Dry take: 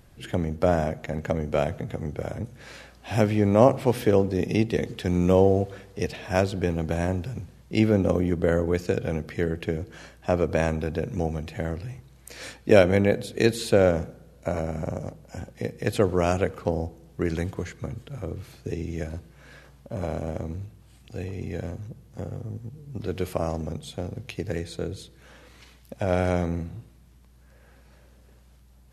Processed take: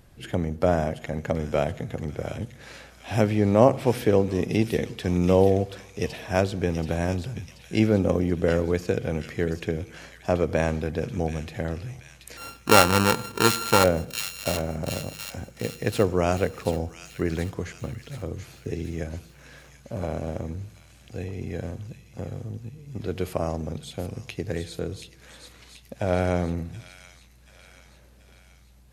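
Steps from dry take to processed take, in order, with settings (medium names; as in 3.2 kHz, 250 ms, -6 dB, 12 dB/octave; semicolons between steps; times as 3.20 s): 12.37–13.84 s: sorted samples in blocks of 32 samples; feedback echo behind a high-pass 731 ms, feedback 55%, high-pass 2.8 kHz, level -5.5 dB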